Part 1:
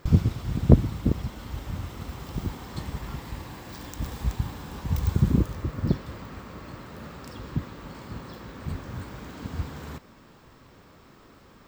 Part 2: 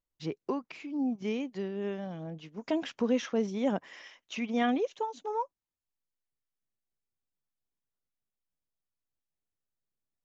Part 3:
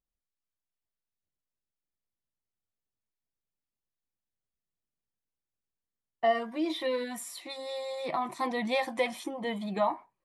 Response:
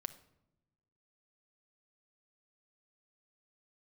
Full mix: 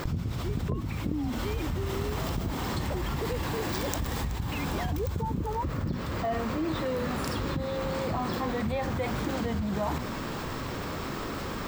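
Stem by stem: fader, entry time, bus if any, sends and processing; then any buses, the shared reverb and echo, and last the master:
+2.5 dB, 0.00 s, no send, compressor 5:1, threshold -35 dBFS, peak gain reduction 24 dB
-4.0 dB, 0.20 s, no send, sine-wave speech; compressor 2:1, threshold -38 dBFS, peak gain reduction 11 dB
-8.0 dB, 0.00 s, no send, tilt -3 dB/oct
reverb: off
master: notches 60/120/180/240 Hz; fast leveller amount 70%

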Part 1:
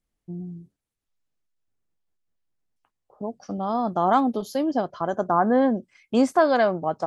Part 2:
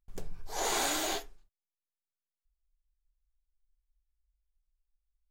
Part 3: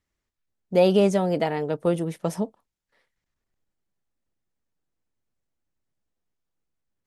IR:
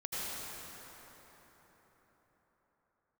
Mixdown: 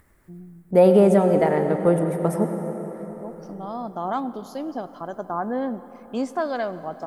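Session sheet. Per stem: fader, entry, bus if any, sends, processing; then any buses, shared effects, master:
-7.5 dB, 0.00 s, send -18 dB, dry
off
+2.0 dB, 0.00 s, send -8.5 dB, upward compressor, threshold -46 dBFS; band shelf 4200 Hz -13 dB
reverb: on, RT60 4.7 s, pre-delay 73 ms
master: dry

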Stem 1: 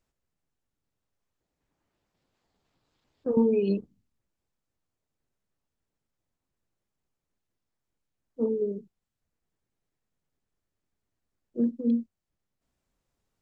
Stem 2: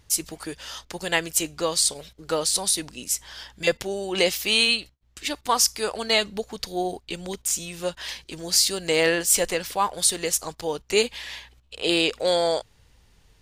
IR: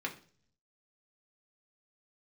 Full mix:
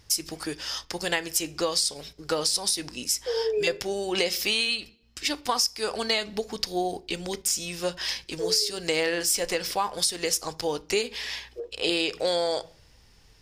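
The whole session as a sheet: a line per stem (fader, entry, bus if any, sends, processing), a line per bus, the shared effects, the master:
+0.5 dB, 0.00 s, no send, elliptic high-pass 390 Hz
-0.5 dB, 0.00 s, send -11.5 dB, bell 5200 Hz +11 dB 0.24 oct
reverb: on, RT60 0.45 s, pre-delay 3 ms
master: compressor 6:1, threshold -22 dBFS, peak gain reduction 13 dB

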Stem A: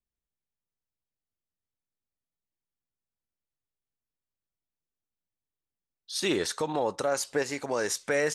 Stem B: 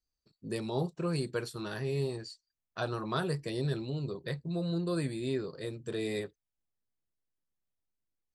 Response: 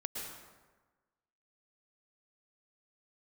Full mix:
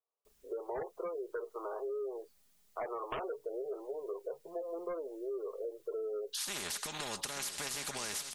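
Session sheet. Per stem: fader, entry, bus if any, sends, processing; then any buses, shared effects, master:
-1.5 dB, 0.25 s, no send, echo send -12 dB, high shelf 3200 Hz +7.5 dB; comb 4.9 ms, depth 58%; spectral compressor 4:1
-5.0 dB, 0.00 s, no send, no echo send, elliptic band-pass 420–1200 Hz, stop band 40 dB; sine folder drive 8 dB, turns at -23.5 dBFS; spectral gate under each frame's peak -25 dB strong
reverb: off
echo: echo 0.882 s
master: compressor, threshold -36 dBFS, peak gain reduction 11 dB

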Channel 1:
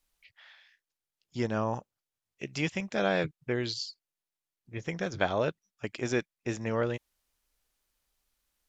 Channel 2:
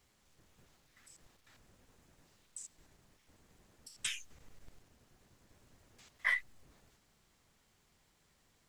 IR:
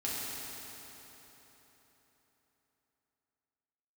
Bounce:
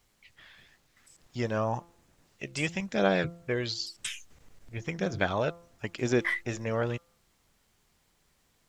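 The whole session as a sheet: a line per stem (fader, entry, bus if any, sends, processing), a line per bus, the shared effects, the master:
+0.5 dB, 0.00 s, no send, de-hum 170.7 Hz, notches 8; phaser 0.98 Hz, delay 2 ms, feedback 37%
+1.5 dB, 0.00 s, no send, dry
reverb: off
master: dry

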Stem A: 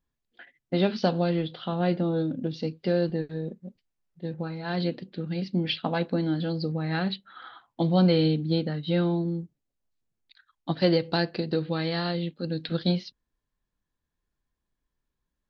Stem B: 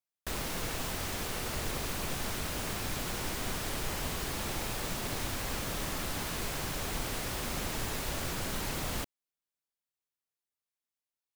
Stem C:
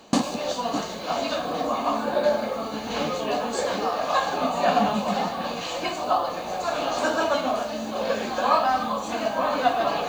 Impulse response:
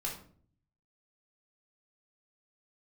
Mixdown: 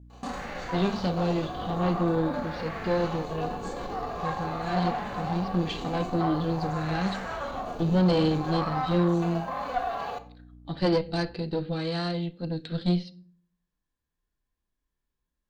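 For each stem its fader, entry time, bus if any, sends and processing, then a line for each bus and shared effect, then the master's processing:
-5.5 dB, 0.00 s, no bus, send -17 dB, dry
-1.0 dB, 0.00 s, bus A, no send, hum 60 Hz, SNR 15 dB; LFO low-pass sine 0.46 Hz 320–1900 Hz
-7.0 dB, 0.10 s, bus A, send -17.5 dB, bell 970 Hz +6.5 dB 1.6 oct; notch comb 310 Hz; auto duck -7 dB, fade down 0.25 s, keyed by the first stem
bus A: 0.0 dB, tremolo saw down 7.7 Hz, depth 50%; limiter -30.5 dBFS, peak gain reduction 14 dB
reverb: on, RT60 0.50 s, pre-delay 3 ms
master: harmonic-percussive split harmonic +9 dB; tube stage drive 16 dB, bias 0.65

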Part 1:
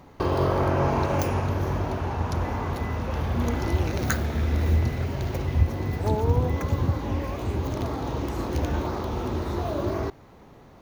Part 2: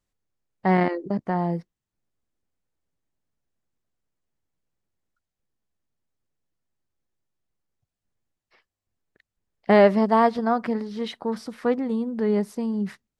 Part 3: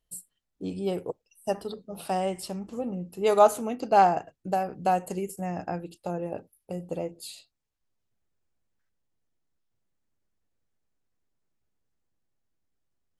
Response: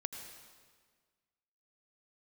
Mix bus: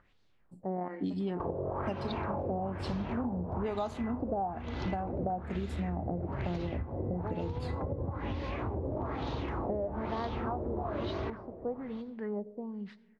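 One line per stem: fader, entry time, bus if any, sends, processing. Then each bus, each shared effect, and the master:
-6.0 dB, 1.20 s, send -6.5 dB, echo send -21 dB, compressor, threshold -26 dBFS, peak gain reduction 12 dB
-16.5 dB, 0.00 s, send -9.5 dB, no echo send, upward compressor, threshold -32 dBFS; ending taper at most 530 dB/s
+1.5 dB, 0.40 s, no send, no echo send, ten-band EQ 250 Hz +9 dB, 500 Hz -7 dB, 2000 Hz -11 dB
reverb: on, RT60 1.6 s, pre-delay 76 ms
echo: feedback echo 0.399 s, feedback 39%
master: LFO low-pass sine 1.1 Hz 530–4100 Hz; compressor 16:1, threshold -30 dBFS, peak gain reduction 19 dB

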